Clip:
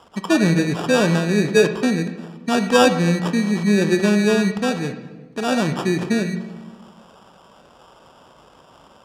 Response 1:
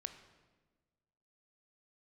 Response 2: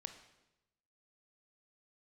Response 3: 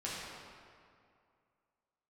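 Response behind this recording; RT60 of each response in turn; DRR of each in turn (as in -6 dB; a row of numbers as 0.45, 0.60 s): 1; 1.4, 0.95, 2.3 s; 8.5, 7.0, -8.0 dB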